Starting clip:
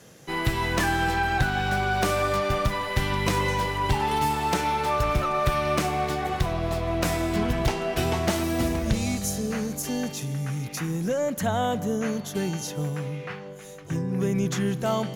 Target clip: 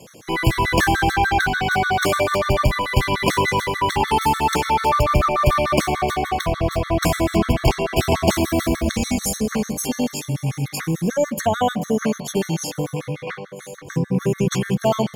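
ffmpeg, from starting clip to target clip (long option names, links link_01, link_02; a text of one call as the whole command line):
ffmpeg -i in.wav -af "bandreject=frequency=50:width_type=h:width=6,bandreject=frequency=100:width_type=h:width=6,bandreject=frequency=150:width_type=h:width=6,bandreject=frequency=200:width_type=h:width=6,afftfilt=real='re*gt(sin(2*PI*6.8*pts/sr)*(1-2*mod(floor(b*sr/1024/1100),2)),0)':imag='im*gt(sin(2*PI*6.8*pts/sr)*(1-2*mod(floor(b*sr/1024/1100),2)),0)':win_size=1024:overlap=0.75,volume=9dB" out.wav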